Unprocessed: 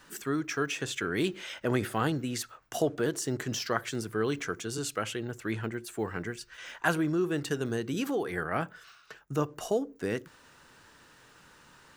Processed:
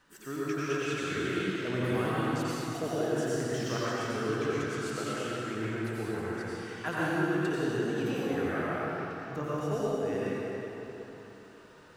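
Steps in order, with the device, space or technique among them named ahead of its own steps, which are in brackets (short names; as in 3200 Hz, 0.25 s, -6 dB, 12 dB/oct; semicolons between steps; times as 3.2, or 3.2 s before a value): swimming-pool hall (reverb RT60 3.8 s, pre-delay 82 ms, DRR -8.5 dB; high shelf 5100 Hz -6.5 dB); gain -8.5 dB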